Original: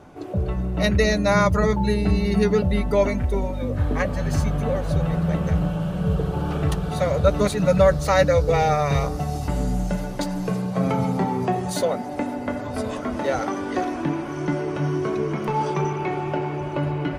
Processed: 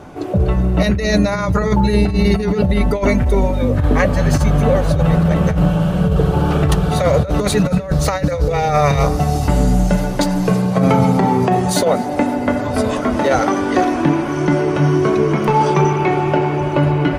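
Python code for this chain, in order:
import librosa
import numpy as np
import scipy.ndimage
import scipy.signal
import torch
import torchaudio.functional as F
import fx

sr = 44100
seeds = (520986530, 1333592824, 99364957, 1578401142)

y = fx.over_compress(x, sr, threshold_db=-21.0, ratio=-0.5)
y = y + 10.0 ** (-22.5 / 20.0) * np.pad(y, (int(239 * sr / 1000.0), 0))[:len(y)]
y = y * librosa.db_to_amplitude(8.5)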